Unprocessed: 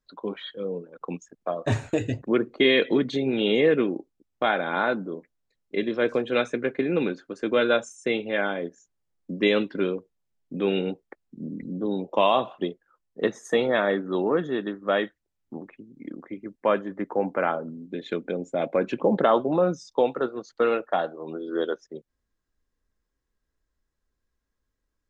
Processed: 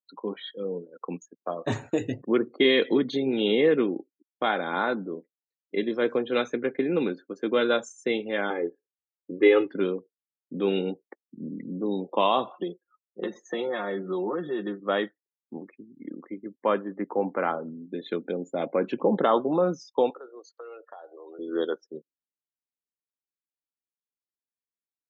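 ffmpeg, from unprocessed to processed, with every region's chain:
ffmpeg -i in.wav -filter_complex "[0:a]asettb=1/sr,asplit=3[link_01][link_02][link_03];[link_01]atrim=end=8.504[link_04];[link_02]atrim=start=8.5:end=9.7,asetpts=PTS-STARTPTS,afade=type=in:duration=0.004:curve=qsin,afade=type=out:start_time=1.196:duration=0.004:curve=qsin,lowpass=frequency=2600:width=0.5412,lowpass=frequency=2600:width=1.3066,aecho=1:1:2.4:0.98,atrim=end_sample=52920[link_05];[link_03]atrim=start=9.696[link_06];[link_04][link_05]acrossfade=duration=0.004:curve1=hsin:curve2=qsin[link_07];[link_07][link_06]acrossfade=duration=0.004:curve1=qsin:curve2=hsin,asettb=1/sr,asplit=3[link_08][link_09][link_10];[link_08]atrim=end=12.524[link_11];[link_09]atrim=start=12.52:end=14.8,asetpts=PTS-STARTPTS,afade=type=in:duration=0.004:curve=qsin,afade=type=out:start_time=2.276:duration=0.004:curve=qsin,aecho=1:1:5.6:0.8,atrim=end_sample=100548,acompressor=threshold=-24dB:ratio=6:attack=3.2:release=140:knee=1:detection=peak,highpass=170,lowpass=4200[link_12];[link_10]atrim=start=14.796[link_13];[link_11][link_12]acrossfade=duration=0.004:curve1=hsin:curve2=qsin[link_14];[link_14][link_13]acrossfade=duration=0.004:curve1=qsin:curve2=hsin,asettb=1/sr,asplit=3[link_15][link_16][link_17];[link_15]atrim=end=20.104[link_18];[link_16]atrim=start=20.1:end=21.39,asetpts=PTS-STARTPTS,afade=type=in:duration=0.004:curve=qsin,afade=type=out:start_time=1.286:duration=0.004:curve=qsin,highpass=frequency=370:width=0.5412,highpass=frequency=370:width=1.3066,acompressor=threshold=-40dB:ratio=5:attack=3.2:release=140:knee=1:detection=peak[link_19];[link_17]atrim=start=21.386[link_20];[link_18][link_19]acrossfade=duration=0.004:curve1=hsin:curve2=qsin[link_21];[link_21][link_20]acrossfade=duration=0.004:curve1=qsin:curve2=hsin,highpass=170,afftdn=noise_reduction=23:noise_floor=-47,equalizer=frequency=630:width_type=o:width=0.33:gain=-5,equalizer=frequency=1600:width_type=o:width=0.33:gain=-4,equalizer=frequency=2500:width_type=o:width=0.33:gain=-5" out.wav

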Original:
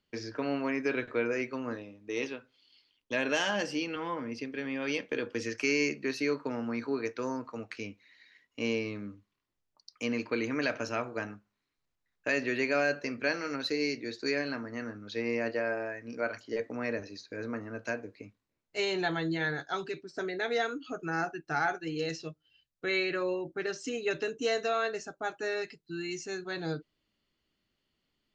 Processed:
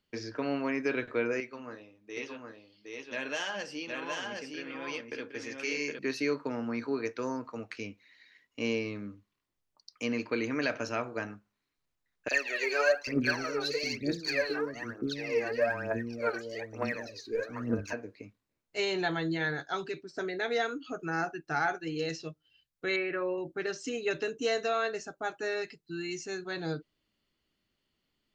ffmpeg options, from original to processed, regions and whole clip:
ffmpeg -i in.wav -filter_complex "[0:a]asettb=1/sr,asplit=3[link_01][link_02][link_03];[link_01]atrim=end=1.404[link_04];[link_02]atrim=start=1.4:end=5.99,asetpts=PTS-STARTPTS,afade=type=in:duration=0.004:curve=qsin,afade=type=out:start_time=4.586:duration=0.004:curve=qsin,flanger=delay=2.3:depth=4.6:regen=-61:speed=1.9:shape=sinusoidal,lowshelf=frequency=460:gain=-6,aecho=1:1:765:0.708,atrim=end_sample=202419[link_05];[link_03]atrim=start=5.986[link_06];[link_04][link_05]acrossfade=duration=0.004:curve1=hsin:curve2=qsin[link_07];[link_07][link_06]acrossfade=duration=0.004:curve1=qsin:curve2=hsin,asettb=1/sr,asplit=3[link_08][link_09][link_10];[link_08]atrim=end=12.284[link_11];[link_09]atrim=start=12.28:end=17.93,asetpts=PTS-STARTPTS,afade=type=in:duration=0.004:curve=qsin,afade=type=out:start_time=5.646:duration=0.004:curve=qsin,acrossover=split=390|2200[link_12][link_13][link_14];[link_13]adelay=30[link_15];[link_12]adelay=790[link_16];[link_16][link_15][link_14]amix=inputs=3:normalize=0,atrim=end_sample=249165,aphaser=in_gain=1:out_gain=1:delay=2.7:decay=0.76:speed=1.1:type=triangular[link_17];[link_10]atrim=start=17.926[link_18];[link_11][link_17]acrossfade=duration=0.004:curve1=hsin:curve2=qsin[link_19];[link_19][link_18]acrossfade=duration=0.004:curve1=qsin:curve2=hsin,asettb=1/sr,asplit=3[link_20][link_21][link_22];[link_20]atrim=end=22.964[link_23];[link_21]atrim=start=22.96:end=23.38,asetpts=PTS-STARTPTS,afade=type=in:duration=0.004:curve=qsin,afade=type=out:start_time=0.416:duration=0.004:curve=qsin,lowpass=frequency=2400:width=0.5412,lowpass=frequency=2400:width=1.3066,lowshelf=frequency=140:gain=-9[link_24];[link_22]atrim=start=23.376[link_25];[link_23][link_24]acrossfade=duration=0.004:curve1=hsin:curve2=qsin[link_26];[link_26][link_25]acrossfade=duration=0.004:curve1=qsin:curve2=hsin" out.wav

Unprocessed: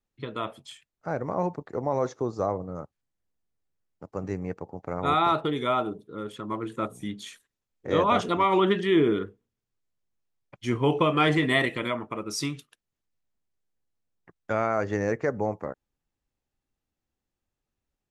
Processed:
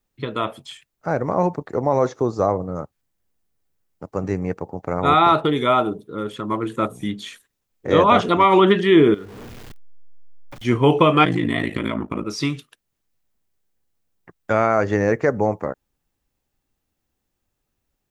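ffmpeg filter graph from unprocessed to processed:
ffmpeg -i in.wav -filter_complex "[0:a]asettb=1/sr,asplit=3[link_01][link_02][link_03];[link_01]atrim=end=9.144[link_04];[link_02]atrim=start=9.14:end=10.65,asetpts=PTS-STARTPTS,afade=type=in:duration=0.004:curve=qsin,afade=type=out:start_time=1.506:duration=0.004:curve=qsin,aeval=exprs='val(0)+0.5*0.0119*sgn(val(0))':channel_layout=same,highshelf=frequency=6800:gain=-7,acompressor=threshold=-44dB:ratio=3:attack=3.2:release=140:knee=1:detection=peak[link_05];[link_03]atrim=start=10.646[link_06];[link_04][link_05]acrossfade=duration=0.004:curve1=hsin:curve2=qsin[link_07];[link_07][link_06]acrossfade=duration=0.004:curve1=qsin:curve2=hsin,asettb=1/sr,asplit=3[link_08][link_09][link_10];[link_08]atrim=end=11.244[link_11];[link_09]atrim=start=11.24:end=12.25,asetpts=PTS-STARTPTS,afade=type=in:duration=0.004:curve=qsin,afade=type=out:start_time=1.006:duration=0.004:curve=qsin,lowshelf=frequency=370:width_type=q:width=1.5:gain=6,acompressor=threshold=-25dB:ratio=3:attack=3.2:release=140:knee=1:detection=peak,aeval=exprs='val(0)*sin(2*PI*27*n/s)':channel_layout=same[link_12];[link_10]atrim=start=12.246[link_13];[link_11][link_12]acrossfade=duration=0.004:curve1=hsin:curve2=qsin[link_14];[link_14][link_13]acrossfade=duration=0.004:curve1=qsin:curve2=hsin,aemphasis=mode=production:type=50kf,acrossover=split=4700[link_15][link_16];[link_16]acompressor=threshold=-48dB:ratio=4:attack=1:release=60[link_17];[link_15][link_17]amix=inputs=2:normalize=0,highshelf=frequency=4600:gain=-9,volume=8dB" out.wav

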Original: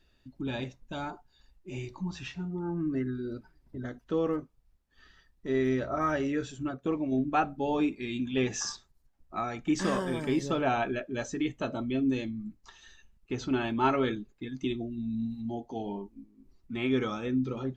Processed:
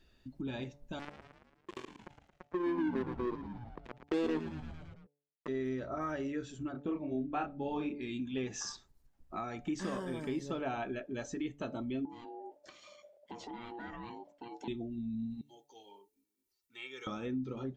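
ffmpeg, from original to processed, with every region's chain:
ffmpeg -i in.wav -filter_complex "[0:a]asettb=1/sr,asplit=3[link_01][link_02][link_03];[link_01]atrim=end=0.994[link_04];[link_02]atrim=start=0.99:end=5.48,asetpts=PTS-STARTPTS,afade=type=in:duration=0.004:curve=qsin,afade=type=out:start_time=4.486:duration=0.004:curve=qsin,highpass=frequency=350:width_type=q:width=4.3,acrusher=bits=3:mix=0:aa=0.5,asplit=7[link_05][link_06][link_07][link_08][link_09][link_10][link_11];[link_06]adelay=112,afreqshift=-82,volume=-10.5dB[link_12];[link_07]adelay=224,afreqshift=-164,volume=-15.5dB[link_13];[link_08]adelay=336,afreqshift=-246,volume=-20.6dB[link_14];[link_09]adelay=448,afreqshift=-328,volume=-25.6dB[link_15];[link_10]adelay=560,afreqshift=-410,volume=-30.6dB[link_16];[link_11]adelay=672,afreqshift=-492,volume=-35.7dB[link_17];[link_05][link_12][link_13][link_14][link_15][link_16][link_17]amix=inputs=7:normalize=0,atrim=end_sample=198009[link_18];[link_03]atrim=start=5.476[link_19];[link_04][link_18]acrossfade=duration=0.004:curve1=hsin:curve2=qsin[link_20];[link_20][link_19]acrossfade=duration=0.004:curve1=qsin:curve2=hsin,asettb=1/sr,asplit=3[link_21][link_22][link_23];[link_21]atrim=end=6.724[link_24];[link_22]atrim=start=6.72:end=8.01,asetpts=PTS-STARTPTS,afade=type=in:duration=0.004:curve=qsin,afade=type=out:start_time=1.286:duration=0.004:curve=qsin,lowpass=4300,asplit=2[link_25][link_26];[link_26]adelay=28,volume=-2dB[link_27];[link_25][link_27]amix=inputs=2:normalize=0,atrim=end_sample=56889[link_28];[link_23]atrim=start=8.006[link_29];[link_24][link_28]acrossfade=duration=0.004:curve1=hsin:curve2=qsin[link_30];[link_30][link_29]acrossfade=duration=0.004:curve1=qsin:curve2=hsin,asettb=1/sr,asplit=3[link_31][link_32][link_33];[link_31]atrim=end=12.054[link_34];[link_32]atrim=start=12.05:end=14.68,asetpts=PTS-STARTPTS,afade=type=in:duration=0.004:curve=qsin,afade=type=out:start_time=2.626:duration=0.004:curve=qsin,acompressor=threshold=-43dB:ratio=3:attack=3.2:release=140:knee=1:detection=peak,aeval=exprs='val(0)*sin(2*PI*590*n/s)':channel_layout=same[link_35];[link_33]atrim=start=14.676[link_36];[link_34][link_35]acrossfade=duration=0.004:curve1=hsin:curve2=qsin[link_37];[link_37][link_36]acrossfade=duration=0.004:curve1=qsin:curve2=hsin,asettb=1/sr,asplit=3[link_38][link_39][link_40];[link_38]atrim=end=15.414[link_41];[link_39]atrim=start=15.41:end=17.07,asetpts=PTS-STARTPTS,afade=type=in:duration=0.004:curve=qsin,afade=type=out:start_time=1.656:duration=0.004:curve=qsin,aderivative,aecho=1:1:2.2:0.62,atrim=end_sample=73206[link_42];[link_40]atrim=start=17.066[link_43];[link_41][link_42]acrossfade=duration=0.004:curve1=hsin:curve2=qsin[link_44];[link_44][link_43]acrossfade=duration=0.004:curve1=qsin:curve2=hsin,equalizer=frequency=280:width=0.63:gain=2.5,bandreject=frequency=144.1:width_type=h:width=4,bandreject=frequency=288.2:width_type=h:width=4,bandreject=frequency=432.3:width_type=h:width=4,bandreject=frequency=576.4:width_type=h:width=4,bandreject=frequency=720.5:width_type=h:width=4,bandreject=frequency=864.6:width_type=h:width=4,acompressor=threshold=-42dB:ratio=2" out.wav

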